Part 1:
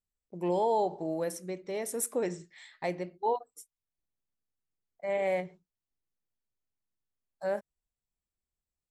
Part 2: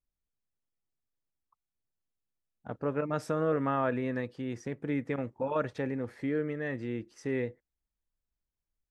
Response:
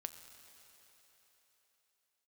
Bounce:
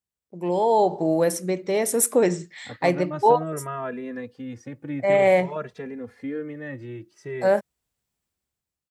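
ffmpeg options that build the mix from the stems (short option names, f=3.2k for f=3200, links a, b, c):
-filter_complex "[0:a]volume=1dB[a];[1:a]asplit=2[b][c];[c]adelay=2.6,afreqshift=0.54[d];[b][d]amix=inputs=2:normalize=1,volume=-9.5dB[e];[a][e]amix=inputs=2:normalize=0,highpass=84,dynaudnorm=f=210:g=7:m=11dB,lowshelf=f=140:g=3.5"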